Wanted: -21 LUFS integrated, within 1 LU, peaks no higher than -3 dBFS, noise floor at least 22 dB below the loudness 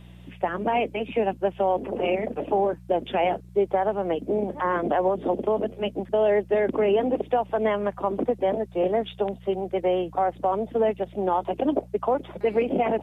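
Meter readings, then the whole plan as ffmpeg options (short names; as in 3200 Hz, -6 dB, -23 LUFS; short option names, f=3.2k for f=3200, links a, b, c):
hum 60 Hz; harmonics up to 180 Hz; hum level -44 dBFS; loudness -25.5 LUFS; peak -10.0 dBFS; loudness target -21.0 LUFS
-> -af "bandreject=f=60:t=h:w=4,bandreject=f=120:t=h:w=4,bandreject=f=180:t=h:w=4"
-af "volume=4.5dB"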